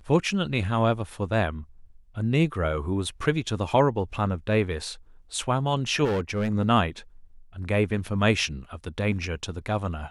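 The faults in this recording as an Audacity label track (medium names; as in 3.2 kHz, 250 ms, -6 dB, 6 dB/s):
6.040000	6.510000	clipped -22 dBFS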